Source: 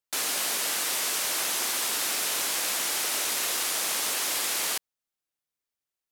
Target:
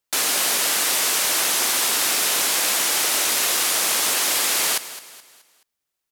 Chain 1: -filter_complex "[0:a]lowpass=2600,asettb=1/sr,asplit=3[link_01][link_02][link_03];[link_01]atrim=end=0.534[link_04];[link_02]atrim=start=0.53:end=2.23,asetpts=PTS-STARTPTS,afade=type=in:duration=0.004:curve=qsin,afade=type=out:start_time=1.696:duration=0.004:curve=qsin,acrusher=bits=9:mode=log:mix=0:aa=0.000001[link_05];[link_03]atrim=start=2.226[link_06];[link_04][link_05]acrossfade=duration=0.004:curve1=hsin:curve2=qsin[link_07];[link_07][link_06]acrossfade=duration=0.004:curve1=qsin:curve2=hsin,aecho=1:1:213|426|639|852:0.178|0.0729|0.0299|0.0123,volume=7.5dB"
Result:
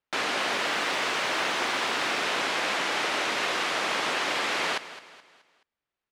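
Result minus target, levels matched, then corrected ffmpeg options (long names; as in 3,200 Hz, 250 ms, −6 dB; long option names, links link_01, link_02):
2,000 Hz band +7.0 dB
-filter_complex "[0:a]asettb=1/sr,asplit=3[link_01][link_02][link_03];[link_01]atrim=end=0.534[link_04];[link_02]atrim=start=0.53:end=2.23,asetpts=PTS-STARTPTS,afade=type=in:duration=0.004:curve=qsin,afade=type=out:start_time=1.696:duration=0.004:curve=qsin,acrusher=bits=9:mode=log:mix=0:aa=0.000001[link_05];[link_03]atrim=start=2.226[link_06];[link_04][link_05]acrossfade=duration=0.004:curve1=hsin:curve2=qsin[link_07];[link_07][link_06]acrossfade=duration=0.004:curve1=qsin:curve2=hsin,aecho=1:1:213|426|639|852:0.178|0.0729|0.0299|0.0123,volume=7.5dB"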